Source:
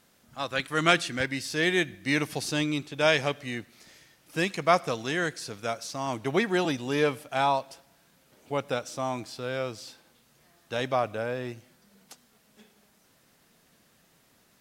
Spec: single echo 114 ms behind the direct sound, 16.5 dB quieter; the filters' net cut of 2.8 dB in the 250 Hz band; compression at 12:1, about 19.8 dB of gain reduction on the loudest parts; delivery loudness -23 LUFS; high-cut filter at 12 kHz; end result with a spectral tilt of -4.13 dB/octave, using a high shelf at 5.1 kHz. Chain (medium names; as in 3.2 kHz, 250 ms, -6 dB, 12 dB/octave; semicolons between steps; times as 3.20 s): low-pass 12 kHz; peaking EQ 250 Hz -4 dB; treble shelf 5.1 kHz -5.5 dB; compression 12:1, threshold -37 dBFS; delay 114 ms -16.5 dB; trim +19 dB